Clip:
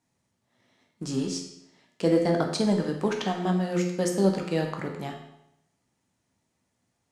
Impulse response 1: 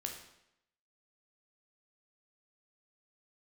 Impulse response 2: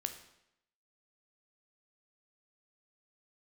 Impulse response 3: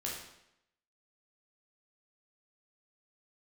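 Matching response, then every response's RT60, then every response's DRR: 1; 0.80 s, 0.80 s, 0.80 s; 2.0 dB, 6.5 dB, -4.5 dB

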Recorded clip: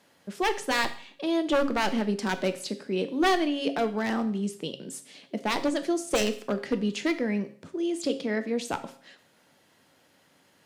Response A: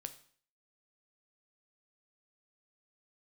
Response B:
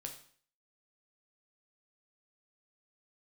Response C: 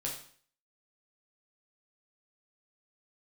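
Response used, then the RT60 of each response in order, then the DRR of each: A; 0.50 s, 0.50 s, 0.50 s; 9.0 dB, 3.0 dB, -2.5 dB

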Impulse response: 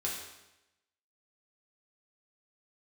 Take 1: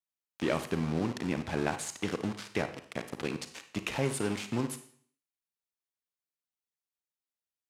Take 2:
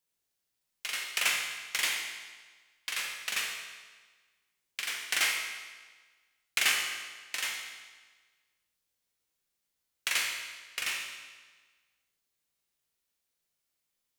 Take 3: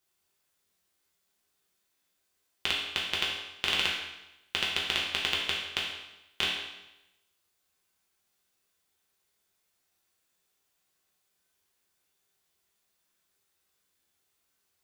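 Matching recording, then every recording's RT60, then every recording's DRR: 3; 0.55 s, 1.4 s, 0.95 s; 9.0 dB, 1.5 dB, -4.5 dB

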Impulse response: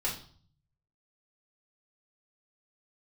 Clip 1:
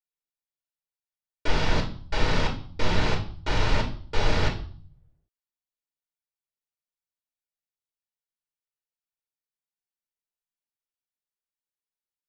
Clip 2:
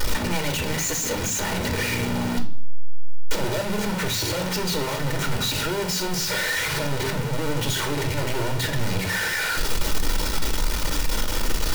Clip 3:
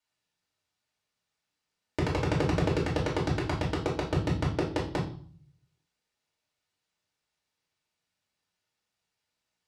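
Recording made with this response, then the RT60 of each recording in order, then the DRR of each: 3; 0.50 s, 0.50 s, 0.50 s; 0.0 dB, 4.0 dB, -6.0 dB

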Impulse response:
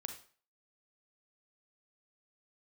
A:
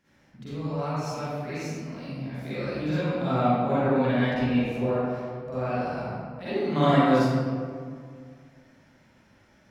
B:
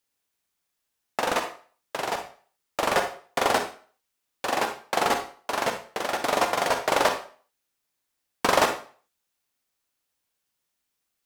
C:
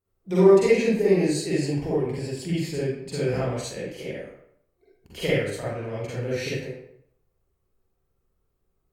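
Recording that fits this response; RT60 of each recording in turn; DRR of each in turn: B; 2.0 s, 0.45 s, 0.70 s; -13.5 dB, 5.0 dB, -9.0 dB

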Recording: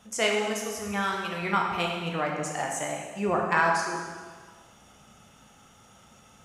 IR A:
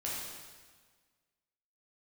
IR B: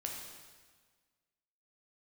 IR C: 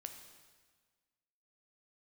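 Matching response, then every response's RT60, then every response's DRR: B; 1.5 s, 1.5 s, 1.5 s; -6.5 dB, -0.5 dB, 5.5 dB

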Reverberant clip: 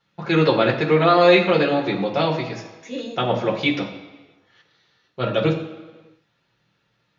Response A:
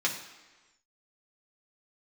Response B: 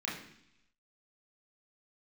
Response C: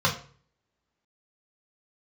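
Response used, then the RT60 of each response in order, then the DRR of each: A; 1.3 s, 0.70 s, 0.45 s; -3.0 dB, -6.0 dB, -2.0 dB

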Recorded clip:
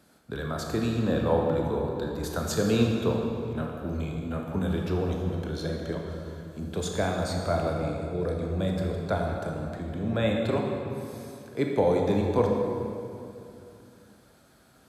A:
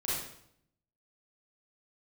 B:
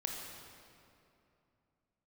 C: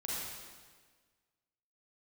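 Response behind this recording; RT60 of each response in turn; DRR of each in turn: B; 0.70 s, 2.7 s, 1.5 s; -8.5 dB, 0.0 dB, -6.5 dB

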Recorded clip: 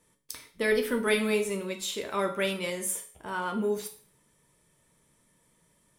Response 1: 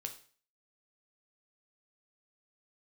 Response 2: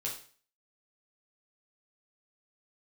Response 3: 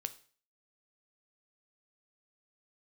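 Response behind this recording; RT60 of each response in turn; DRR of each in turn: 1; 0.45 s, 0.45 s, 0.45 s; 4.5 dB, -3.5 dB, 10.0 dB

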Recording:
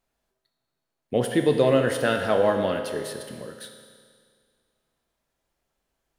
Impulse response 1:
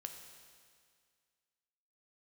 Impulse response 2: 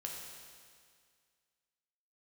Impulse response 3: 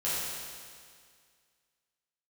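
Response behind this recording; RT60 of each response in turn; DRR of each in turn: 1; 2.0 s, 2.0 s, 2.0 s; 4.5 dB, -1.0 dB, -11.0 dB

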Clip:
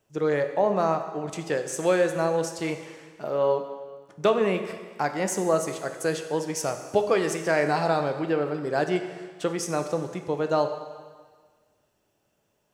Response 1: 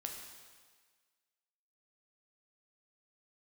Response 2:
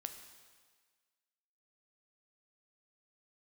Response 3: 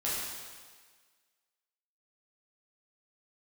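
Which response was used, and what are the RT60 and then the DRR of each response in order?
2; 1.6 s, 1.6 s, 1.6 s; 1.5 dB, 6.5 dB, -8.5 dB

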